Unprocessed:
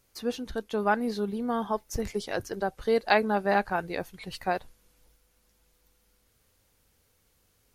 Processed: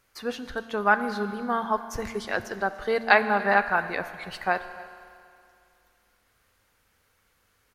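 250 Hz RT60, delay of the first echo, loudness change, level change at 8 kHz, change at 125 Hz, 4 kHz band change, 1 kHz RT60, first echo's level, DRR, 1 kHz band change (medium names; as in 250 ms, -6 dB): 2.5 s, 289 ms, +3.5 dB, -1.5 dB, -1.5 dB, +1.0 dB, 2.5 s, -21.5 dB, 10.5 dB, +4.0 dB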